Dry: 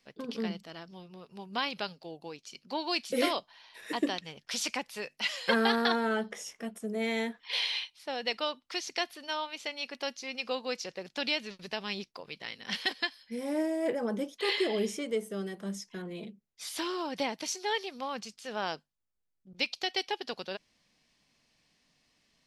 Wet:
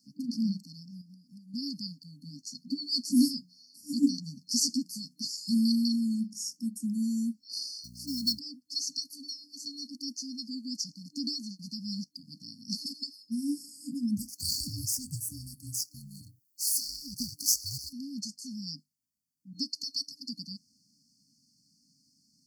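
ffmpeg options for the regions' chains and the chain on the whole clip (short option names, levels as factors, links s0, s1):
-filter_complex "[0:a]asettb=1/sr,asplit=3[s0][s1][s2];[s0]atrim=end=1.014[s3];[s1]atrim=start=1.01:end=1.54,asetpts=PTS-STARTPTS,afade=t=in:d=0.004:c=qsin,afade=t=out:st=0.526:d=0.004:c=qsin,aecho=1:1:3.5:0.55,atrim=end_sample=23373,acompressor=threshold=0.00282:ratio=5:attack=3.2:release=140:knee=1:detection=peak[s4];[s2]atrim=start=1.536[s5];[s3][s4]acrossfade=d=0.004:c1=hsin:c2=qsin[s6];[s6][s5]acrossfade=d=0.004:c1=qsin:c2=hsin,asettb=1/sr,asplit=3[s7][s8][s9];[s7]atrim=end=2.214[s10];[s8]atrim=start=2.21:end=5.25,asetpts=PTS-STARTPTS,afade=t=in:d=0.004:c=qsin,afade=t=out:st=3.036:d=0.004:c=qsin,equalizer=f=450:w=0.63:g=8,bandreject=f=60:t=h:w=6,bandreject=f=120:t=h:w=6,bandreject=f=180:t=h:w=6,asplit=2[s11][s12];[s12]adelay=12,volume=0.355[s13];[s11][s13]amix=inputs=2:normalize=0,atrim=end_sample=134064[s14];[s9]atrim=start=5.246[s15];[s10][s14]acrossfade=d=0.004:c1=hsin:c2=qsin[s16];[s16][s15]acrossfade=d=0.004:c1=qsin:c2=hsin,asettb=1/sr,asplit=3[s17][s18][s19];[s17]atrim=end=7.844[s20];[s18]atrim=start=7.84:end=8.39,asetpts=PTS-STARTPTS,afade=t=in:d=0.004:c=qsin,afade=t=out:st=0.546:d=0.004:c=qsin,acontrast=36,aeval=exprs='val(0)+0.00355*(sin(2*PI*60*n/s)+sin(2*PI*2*60*n/s)/2+sin(2*PI*3*60*n/s)/3+sin(2*PI*4*60*n/s)/4+sin(2*PI*5*60*n/s)/5)':c=same,acrusher=bits=5:mode=log:mix=0:aa=0.000001[s21];[s19]atrim=start=8.386[s22];[s20][s21]acrossfade=d=0.004:c1=hsin:c2=qsin[s23];[s23][s22]acrossfade=d=0.004:c1=qsin:c2=hsin,asettb=1/sr,asplit=3[s24][s25][s26];[s24]atrim=end=14.174[s27];[s25]atrim=start=14.17:end=17.93,asetpts=PTS-STARTPTS,afade=t=in:d=0.004:c=qsin,afade=t=out:st=3.756:d=0.004:c=qsin,aeval=exprs='if(lt(val(0),0),0.447*val(0),val(0))':c=same,aemphasis=mode=production:type=75fm,aeval=exprs='val(0)*sin(2*PI*320*n/s)':c=same[s28];[s26]atrim=start=17.926[s29];[s27][s28]acrossfade=d=0.004:c1=hsin:c2=qsin[s30];[s30][s29]acrossfade=d=0.004:c1=qsin:c2=hsin,afftfilt=real='re*(1-between(b*sr/4096,300,4300))':imag='im*(1-between(b*sr/4096,300,4300))':win_size=4096:overlap=0.75,highpass=140,volume=2.24"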